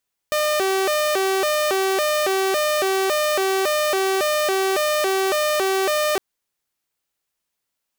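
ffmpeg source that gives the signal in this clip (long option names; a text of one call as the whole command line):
ffmpeg -f lavfi -i "aevalsrc='0.168*(2*mod((494.5*t+110.5/1.8*(0.5-abs(mod(1.8*t,1)-0.5))),1)-1)':duration=5.86:sample_rate=44100" out.wav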